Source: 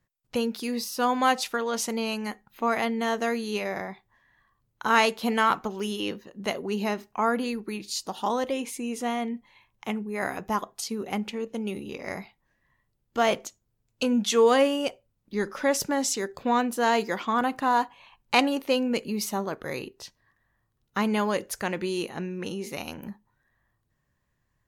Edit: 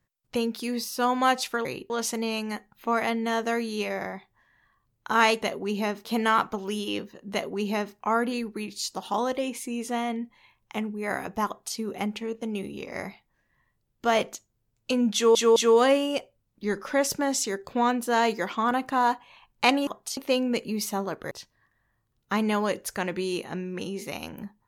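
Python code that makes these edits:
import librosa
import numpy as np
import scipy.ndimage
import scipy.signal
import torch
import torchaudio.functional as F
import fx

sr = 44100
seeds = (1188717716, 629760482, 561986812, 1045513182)

y = fx.edit(x, sr, fx.duplicate(start_s=6.45, length_s=0.63, to_s=5.17),
    fx.duplicate(start_s=10.59, length_s=0.3, to_s=18.57),
    fx.stutter(start_s=14.26, slice_s=0.21, count=3),
    fx.move(start_s=19.71, length_s=0.25, to_s=1.65), tone=tone)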